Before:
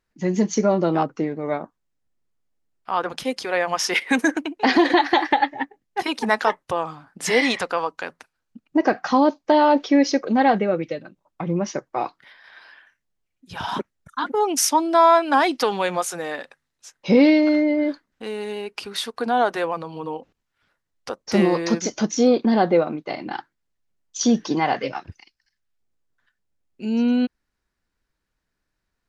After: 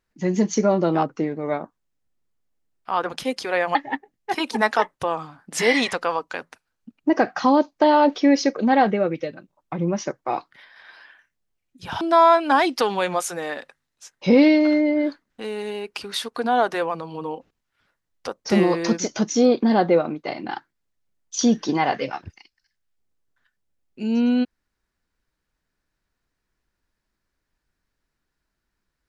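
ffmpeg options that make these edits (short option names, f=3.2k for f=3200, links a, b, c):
-filter_complex "[0:a]asplit=3[a][b][c];[a]atrim=end=3.752[d];[b]atrim=start=5.428:end=13.692[e];[c]atrim=start=14.828[f];[d][e]acrossfade=d=0.004:c1=hsin:c2=hsin[g];[g][f]acrossfade=d=0.004:c1=hsin:c2=hsin"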